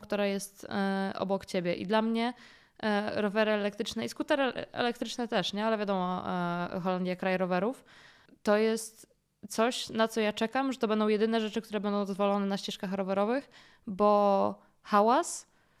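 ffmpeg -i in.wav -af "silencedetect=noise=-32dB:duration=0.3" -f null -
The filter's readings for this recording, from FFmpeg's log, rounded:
silence_start: 2.30
silence_end: 2.83 | silence_duration: 0.53
silence_start: 7.72
silence_end: 8.46 | silence_duration: 0.74
silence_start: 8.86
silence_end: 9.52 | silence_duration: 0.66
silence_start: 13.39
silence_end: 13.88 | silence_duration: 0.48
silence_start: 14.51
silence_end: 14.90 | silence_duration: 0.39
silence_start: 15.39
silence_end: 15.80 | silence_duration: 0.41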